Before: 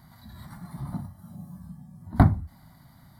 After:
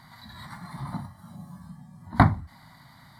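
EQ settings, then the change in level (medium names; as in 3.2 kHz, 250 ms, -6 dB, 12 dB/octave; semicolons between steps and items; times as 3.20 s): graphic EQ 125/250/500/1000/2000/4000/8000 Hz +5/+4/+4/+11/+12/+11/+8 dB; -6.5 dB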